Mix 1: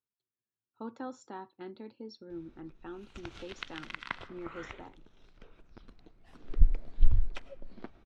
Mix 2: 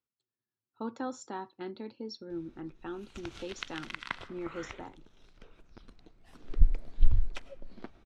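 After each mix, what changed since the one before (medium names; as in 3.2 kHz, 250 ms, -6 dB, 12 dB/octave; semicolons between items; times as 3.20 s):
speech +4.0 dB; master: add treble shelf 6.4 kHz +10.5 dB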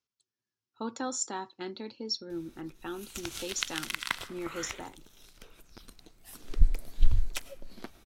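master: remove tape spacing loss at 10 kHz 25 dB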